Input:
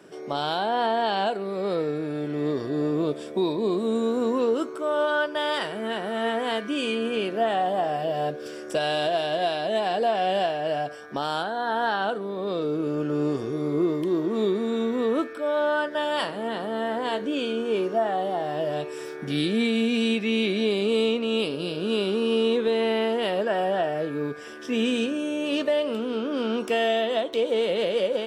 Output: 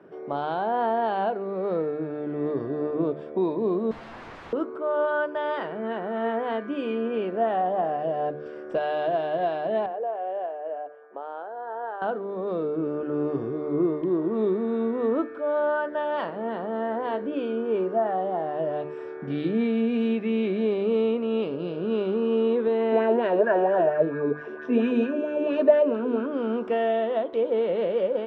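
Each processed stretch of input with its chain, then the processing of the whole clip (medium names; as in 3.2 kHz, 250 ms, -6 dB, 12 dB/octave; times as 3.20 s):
3.91–4.53 s: tilt shelf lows -4.5 dB, about 690 Hz + de-hum 111.4 Hz, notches 35 + integer overflow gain 31 dB
9.86–12.02 s: ladder high-pass 370 Hz, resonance 35% + distance through air 410 m
22.92–26.26 s: rippled EQ curve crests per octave 1.5, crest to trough 7 dB + sweeping bell 4.4 Hz 290–1800 Hz +9 dB
whole clip: low-pass 1.4 kHz 12 dB/octave; hum notches 50/100/150/200/250/300 Hz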